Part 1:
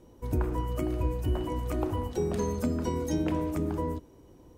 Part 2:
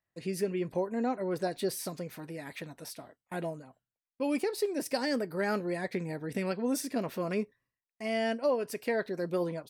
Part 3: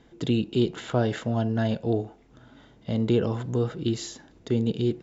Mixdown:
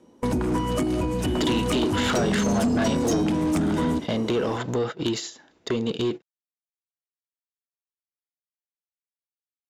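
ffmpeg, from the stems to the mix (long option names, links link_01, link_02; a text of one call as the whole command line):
ffmpeg -i stem1.wav -i stem2.wav -i stem3.wav -filter_complex "[0:a]acrossover=split=230|3000[link_01][link_02][link_03];[link_02]acompressor=threshold=-42dB:ratio=6[link_04];[link_01][link_04][link_03]amix=inputs=3:normalize=0,volume=3dB[link_05];[2:a]acompressor=threshold=-36dB:ratio=3,adelay=1200,volume=1.5dB[link_06];[link_05]equalizer=frequency=220:width=1.4:gain=12.5,alimiter=limit=-21.5dB:level=0:latency=1:release=236,volume=0dB[link_07];[link_06][link_07]amix=inputs=2:normalize=0,lowpass=frequency=11000:width=0.5412,lowpass=frequency=11000:width=1.3066,agate=range=-20dB:threshold=-38dB:ratio=16:detection=peak,asplit=2[link_08][link_09];[link_09]highpass=frequency=720:poles=1,volume=26dB,asoftclip=type=tanh:threshold=-13dB[link_10];[link_08][link_10]amix=inputs=2:normalize=0,lowpass=frequency=7000:poles=1,volume=-6dB" out.wav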